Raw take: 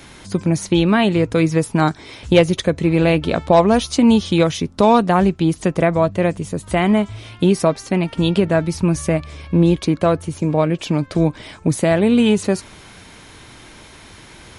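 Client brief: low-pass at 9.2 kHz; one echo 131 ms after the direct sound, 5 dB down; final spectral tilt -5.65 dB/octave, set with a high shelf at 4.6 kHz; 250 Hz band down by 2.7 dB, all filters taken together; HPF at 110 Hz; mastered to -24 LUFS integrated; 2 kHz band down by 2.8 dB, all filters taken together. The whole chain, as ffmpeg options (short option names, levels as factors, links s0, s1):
-af "highpass=110,lowpass=9200,equalizer=f=250:t=o:g=-3.5,equalizer=f=2000:t=o:g=-4.5,highshelf=f=4600:g=4.5,aecho=1:1:131:0.562,volume=0.501"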